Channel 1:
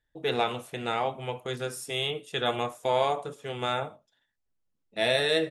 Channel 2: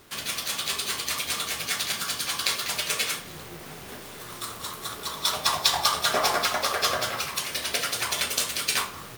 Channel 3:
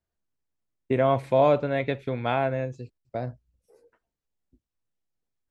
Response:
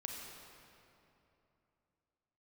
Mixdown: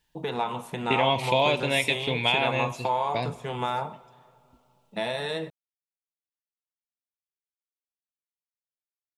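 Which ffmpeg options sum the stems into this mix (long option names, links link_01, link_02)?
-filter_complex "[0:a]equalizer=frequency=180:width=2.3:gain=13,acompressor=threshold=-32dB:ratio=5,volume=1.5dB,asplit=2[link_01][link_02];[link_02]volume=-16.5dB[link_03];[2:a]highshelf=frequency=1900:width_type=q:width=3:gain=14,acompressor=threshold=-23dB:ratio=3,volume=-0.5dB,asplit=2[link_04][link_05];[link_05]volume=-14.5dB[link_06];[3:a]atrim=start_sample=2205[link_07];[link_03][link_06]amix=inputs=2:normalize=0[link_08];[link_08][link_07]afir=irnorm=-1:irlink=0[link_09];[link_01][link_04][link_09]amix=inputs=3:normalize=0,equalizer=frequency=950:width=3.3:gain=15"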